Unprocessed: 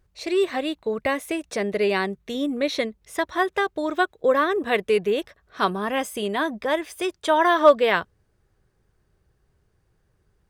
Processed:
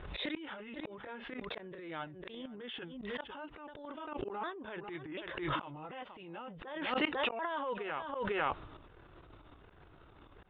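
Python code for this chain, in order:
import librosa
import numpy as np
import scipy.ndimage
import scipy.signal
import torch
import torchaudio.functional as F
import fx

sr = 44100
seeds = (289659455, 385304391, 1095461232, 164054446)

p1 = fx.pitch_ramps(x, sr, semitones=-5.5, every_ms=739)
p2 = p1 * (1.0 - 0.52 / 2.0 + 0.52 / 2.0 * np.cos(2.0 * np.pi * 5.7 * (np.arange(len(p1)) / sr)))
p3 = p2 + fx.echo_single(p2, sr, ms=498, db=-20.5, dry=0)
p4 = fx.transient(p3, sr, attack_db=-10, sustain_db=10)
p5 = fx.gate_flip(p4, sr, shuts_db=-24.0, range_db=-32)
p6 = fx.low_shelf(p5, sr, hz=260.0, db=-7.5)
p7 = fx.notch(p6, sr, hz=2400.0, q=24.0)
p8 = fx.over_compress(p7, sr, threshold_db=-50.0, ratio=-1.0)
p9 = p7 + (p8 * 10.0 ** (-2.0 / 20.0))
p10 = scipy.signal.sosfilt(scipy.signal.cheby1(6, 3, 3700.0, 'lowpass', fs=sr, output='sos'), p9)
p11 = fx.auto_swell(p10, sr, attack_ms=133.0)
p12 = fx.dynamic_eq(p11, sr, hz=370.0, q=1.1, threshold_db=-56.0, ratio=4.0, max_db=-3)
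p13 = fx.pre_swell(p12, sr, db_per_s=45.0)
y = p13 * 10.0 ** (10.5 / 20.0)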